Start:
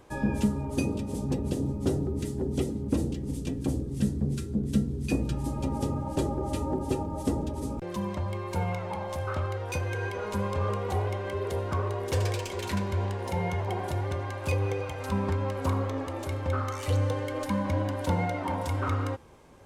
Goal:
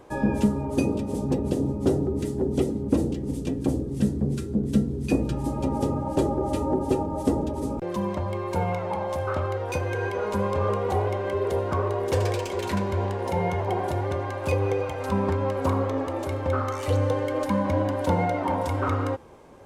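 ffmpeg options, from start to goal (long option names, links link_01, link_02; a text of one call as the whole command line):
ffmpeg -i in.wav -af "equalizer=frequency=520:width_type=o:width=2.9:gain=7" out.wav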